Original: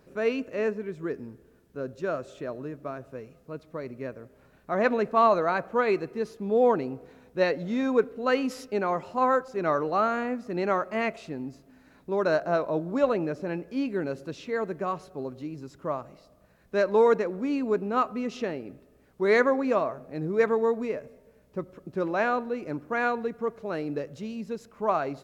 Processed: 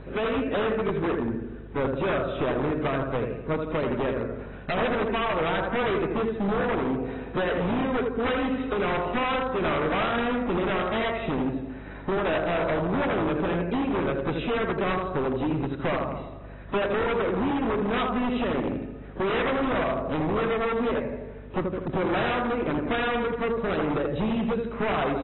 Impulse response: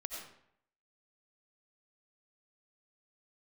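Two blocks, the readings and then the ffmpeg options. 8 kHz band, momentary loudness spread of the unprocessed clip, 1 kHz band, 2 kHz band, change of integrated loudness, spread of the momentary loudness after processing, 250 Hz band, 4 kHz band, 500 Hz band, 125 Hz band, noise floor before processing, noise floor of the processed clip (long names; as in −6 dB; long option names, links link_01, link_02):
can't be measured, 16 LU, +0.5 dB, +3.0 dB, +1.0 dB, 5 LU, +4.0 dB, +8.5 dB, 0.0 dB, +8.0 dB, −60 dBFS, −40 dBFS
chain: -filter_complex "[0:a]aemphasis=mode=reproduction:type=50fm,acrossover=split=2600[link_01][link_02];[link_02]acompressor=threshold=-54dB:ratio=4:attack=1:release=60[link_03];[link_01][link_03]amix=inputs=2:normalize=0,highshelf=frequency=2900:gain=2.5,asplit=2[link_04][link_05];[link_05]alimiter=limit=-20.5dB:level=0:latency=1:release=47,volume=-2dB[link_06];[link_04][link_06]amix=inputs=2:normalize=0,acompressor=threshold=-30dB:ratio=8,asplit=2[link_07][link_08];[link_08]adelay=81,lowpass=frequency=4200:poles=1,volume=-5dB,asplit=2[link_09][link_10];[link_10]adelay=81,lowpass=frequency=4200:poles=1,volume=0.54,asplit=2[link_11][link_12];[link_12]adelay=81,lowpass=frequency=4200:poles=1,volume=0.54,asplit=2[link_13][link_14];[link_14]adelay=81,lowpass=frequency=4200:poles=1,volume=0.54,asplit=2[link_15][link_16];[link_16]adelay=81,lowpass=frequency=4200:poles=1,volume=0.54,asplit=2[link_17][link_18];[link_18]adelay=81,lowpass=frequency=4200:poles=1,volume=0.54,asplit=2[link_19][link_20];[link_20]adelay=81,lowpass=frequency=4200:poles=1,volume=0.54[link_21];[link_07][link_09][link_11][link_13][link_15][link_17][link_19][link_21]amix=inputs=8:normalize=0,aeval=exprs='val(0)+0.00282*(sin(2*PI*50*n/s)+sin(2*PI*2*50*n/s)/2+sin(2*PI*3*50*n/s)/3+sin(2*PI*4*50*n/s)/4+sin(2*PI*5*50*n/s)/5)':channel_layout=same,aeval=exprs='0.0335*(abs(mod(val(0)/0.0335+3,4)-2)-1)':channel_layout=same,volume=8.5dB" -ar 24000 -c:a aac -b:a 16k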